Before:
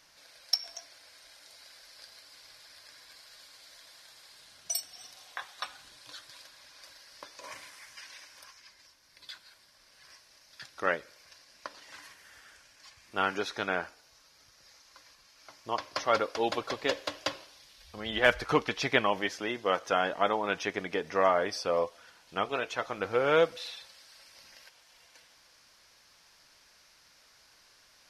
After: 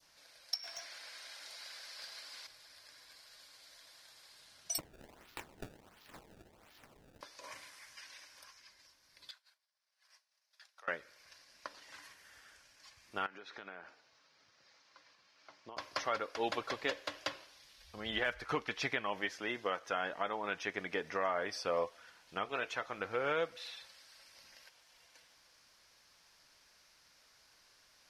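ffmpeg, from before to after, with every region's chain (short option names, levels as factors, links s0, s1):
-filter_complex "[0:a]asettb=1/sr,asplit=3[s0][s1][s2];[s0]atrim=end=0.634[s3];[s1]atrim=start=0.63:end=2.47,asetpts=PTS-STARTPTS,afade=t=in:d=0.004:c=qsin,afade=t=out:st=1.836:d=0.004:c=qsin,highshelf=f=9500:g=-2,asplit=2[s4][s5];[s5]highpass=f=720:p=1,volume=6.31,asoftclip=type=tanh:threshold=0.0376[s6];[s4][s6]amix=inputs=2:normalize=0,lowpass=f=7200:p=1,volume=0.501[s7];[s2]atrim=start=2.466[s8];[s3][s7]acrossfade=d=0.004:c1=hsin:c2=qsin[s9];[s9][s8]acrossfade=d=0.004:c1=qsin:c2=hsin,asettb=1/sr,asplit=3[s10][s11][s12];[s10]atrim=end=4.784[s13];[s11]atrim=start=4.78:end=7.21,asetpts=PTS-STARTPTS,afade=t=in:d=0.004:c=qsin,afade=t=out:st=2.426:d=0.004:c=qsin,aeval=exprs='val(0)*sin(2*PI*720*n/s)':c=same,acrusher=samples=24:mix=1:aa=0.000001:lfo=1:lforange=38.4:lforate=1.4[s14];[s12]atrim=start=7.206[s15];[s13][s14]acrossfade=d=0.004:c1=hsin:c2=qsin[s16];[s16][s15]acrossfade=d=0.004:c1=qsin:c2=hsin,asettb=1/sr,asplit=3[s17][s18][s19];[s17]atrim=end=9.314[s20];[s18]atrim=start=9.31:end=10.88,asetpts=PTS-STARTPTS,afade=t=in:d=0.004:c=qsin,afade=t=out:st=1.566:d=0.004:c=qsin,highpass=f=600:w=0.5412,highpass=f=600:w=1.3066,acompressor=threshold=0.00447:ratio=6:attack=3.2:release=140:knee=1:detection=peak,agate=range=0.0224:threshold=0.00316:ratio=3:release=100:detection=peak[s21];[s19]atrim=start=10.876[s22];[s20][s21]acrossfade=d=0.004:c1=hsin:c2=qsin[s23];[s23][s22]acrossfade=d=0.004:c1=qsin:c2=hsin,asettb=1/sr,asplit=3[s24][s25][s26];[s24]atrim=end=13.264[s27];[s25]atrim=start=13.26:end=15.77,asetpts=PTS-STARTPTS,afade=t=in:d=0.004:c=qsin,afade=t=out:st=2.506:d=0.004:c=qsin,highpass=140,lowpass=4200,acompressor=threshold=0.01:ratio=8:attack=3.2:release=140:knee=1:detection=peak[s28];[s26]atrim=start=15.766[s29];[s27][s28]acrossfade=d=0.004:c1=hsin:c2=qsin[s30];[s30][s29]acrossfade=d=0.004:c1=qsin:c2=hsin,adynamicequalizer=threshold=0.00794:dfrequency=1800:dqfactor=0.96:tfrequency=1800:tqfactor=0.96:attack=5:release=100:ratio=0.375:range=2.5:mode=boostabove:tftype=bell,alimiter=limit=0.15:level=0:latency=1:release=424,volume=0.562"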